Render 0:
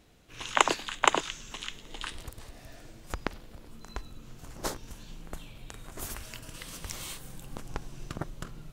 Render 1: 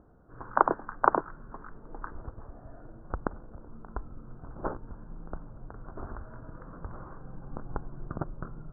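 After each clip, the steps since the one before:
Butterworth low-pass 1,500 Hz 72 dB per octave
upward compression, threshold −58 dBFS
level +2 dB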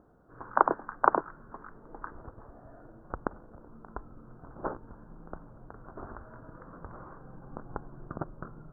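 low-shelf EQ 120 Hz −9 dB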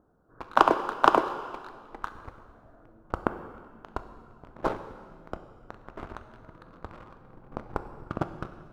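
leveller curve on the samples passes 2
dense smooth reverb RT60 1.8 s, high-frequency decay 0.95×, DRR 8.5 dB
level −1 dB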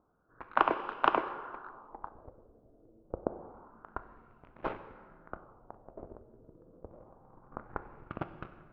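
auto-filter low-pass sine 0.27 Hz 440–2,600 Hz
level −8.5 dB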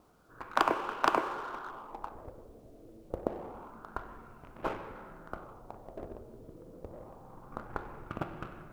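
mu-law and A-law mismatch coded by mu
wave folding −12 dBFS

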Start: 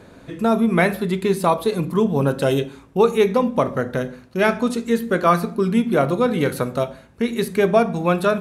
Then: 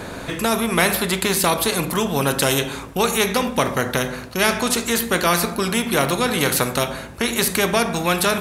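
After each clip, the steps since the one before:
high-shelf EQ 8,200 Hz +5.5 dB
every bin compressed towards the loudest bin 2 to 1
level +1 dB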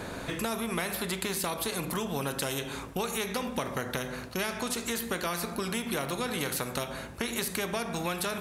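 downward compressor, threshold −22 dBFS, peak gain reduction 10 dB
level −6.5 dB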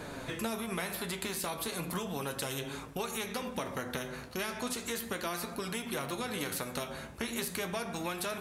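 flanger 0.35 Hz, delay 6.5 ms, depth 7.5 ms, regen +52%

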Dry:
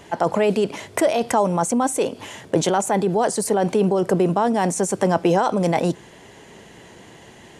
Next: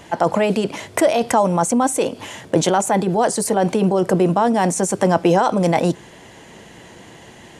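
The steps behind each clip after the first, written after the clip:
notch filter 410 Hz, Q 12
level +3 dB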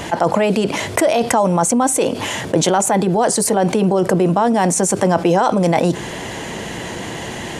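envelope flattener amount 50%
level −1 dB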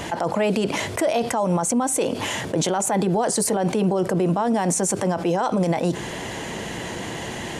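brickwall limiter −9.5 dBFS, peak gain reduction 8 dB
level −3.5 dB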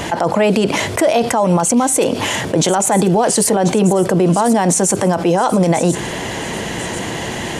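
delay with a high-pass on its return 1,039 ms, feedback 49%, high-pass 3,700 Hz, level −10.5 dB
level +7.5 dB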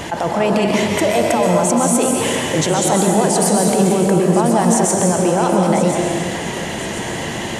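convolution reverb RT60 2.0 s, pre-delay 120 ms, DRR −0.5 dB
level −4 dB

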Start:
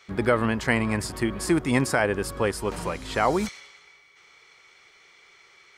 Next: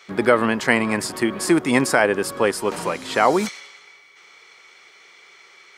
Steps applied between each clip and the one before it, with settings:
high-pass filter 210 Hz 12 dB per octave
level +6 dB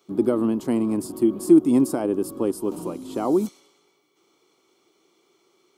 drawn EQ curve 140 Hz 0 dB, 210 Hz +3 dB, 320 Hz +10 dB, 460 Hz −4 dB, 1,200 Hz −10 dB, 1,800 Hz −27 dB, 3,000 Hz −13 dB, 5,000 Hz −12 dB, 8,700 Hz −5 dB, 13,000 Hz +3 dB
level −4 dB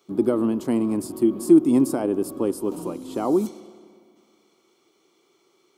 spring reverb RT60 2.2 s, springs 30/56 ms, chirp 70 ms, DRR 18 dB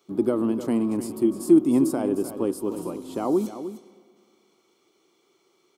single-tap delay 305 ms −11.5 dB
level −2 dB

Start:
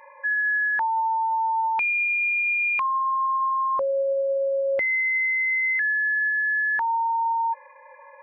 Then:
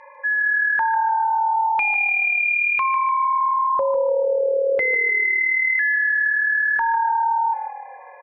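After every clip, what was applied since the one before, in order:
high-frequency loss of the air 68 metres
on a send: echo with shifted repeats 149 ms, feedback 49%, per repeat −38 Hz, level −9 dB
on the sum: level +3.5 dB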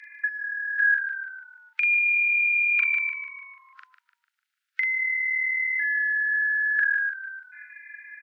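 Butterworth high-pass 1,400 Hz 96 dB per octave
compressor whose output falls as the input rises −24 dBFS, ratio −0.5
double-tracking delay 41 ms −2.5 dB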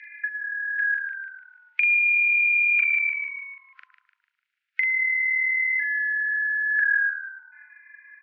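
downward compressor 2 to 1, threshold −26 dBFS, peak gain reduction 5 dB
band-pass filter sweep 2,300 Hz → 920 Hz, 0:06.65–0:07.52
bucket-brigade delay 109 ms, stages 1,024, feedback 35%, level −8 dB
level +5.5 dB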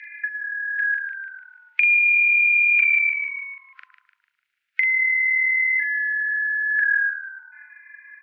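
dynamic equaliser 1,300 Hz, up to −6 dB, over −39 dBFS, Q 2.2
on a send at −22 dB: convolution reverb, pre-delay 3 ms
on the sum: level +4 dB

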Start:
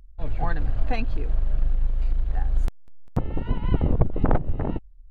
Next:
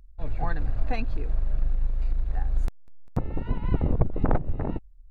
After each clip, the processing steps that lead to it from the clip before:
notch filter 3,100 Hz, Q 7.4
level −2.5 dB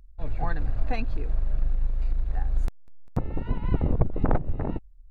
no processing that can be heard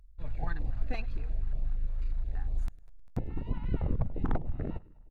in parallel at −5 dB: asymmetric clip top −28.5 dBFS
on the sum: repeating echo 104 ms, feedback 58%, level −22 dB
notch on a step sequencer 8.5 Hz 280–1,500 Hz
level −8.5 dB

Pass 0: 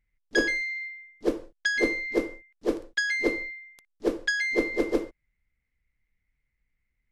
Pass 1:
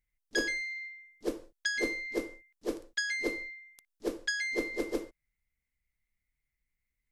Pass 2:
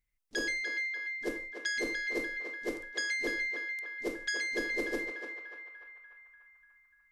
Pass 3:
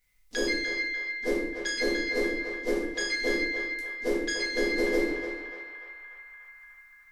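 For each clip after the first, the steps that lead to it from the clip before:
high-shelf EQ 4,700 Hz +11.5 dB; level −8 dB
brickwall limiter −24 dBFS, peak gain reduction 5.5 dB; on a send: feedback echo with a band-pass in the loop 294 ms, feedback 66%, band-pass 1,500 Hz, level −3.5 dB
rectangular room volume 140 cubic metres, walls mixed, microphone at 1.9 metres; one half of a high-frequency compander encoder only

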